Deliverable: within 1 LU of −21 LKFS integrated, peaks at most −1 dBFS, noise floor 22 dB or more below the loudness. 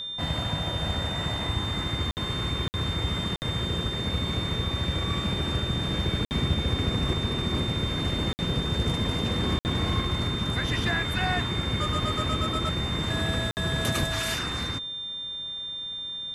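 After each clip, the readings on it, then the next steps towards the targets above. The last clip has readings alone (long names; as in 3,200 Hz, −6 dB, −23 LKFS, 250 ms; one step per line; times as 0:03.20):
number of dropouts 7; longest dropout 59 ms; interfering tone 3,600 Hz; level of the tone −32 dBFS; integrated loudness −27.5 LKFS; sample peak −12.5 dBFS; target loudness −21.0 LKFS
→ repair the gap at 0:02.11/0:02.68/0:03.36/0:06.25/0:08.33/0:09.59/0:13.51, 59 ms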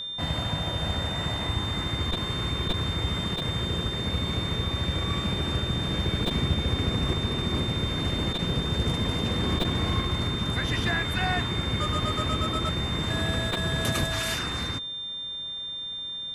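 number of dropouts 0; interfering tone 3,600 Hz; level of the tone −32 dBFS
→ notch filter 3,600 Hz, Q 30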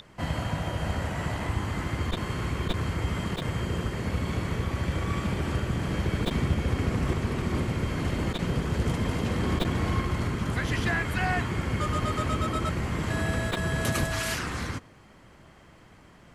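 interfering tone none found; integrated loudness −29.0 LKFS; sample peak −12.0 dBFS; target loudness −21.0 LKFS
→ level +8 dB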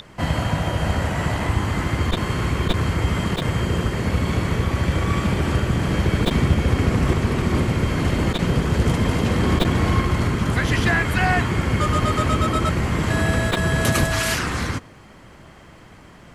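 integrated loudness −21.0 LKFS; sample peak −4.0 dBFS; background noise floor −45 dBFS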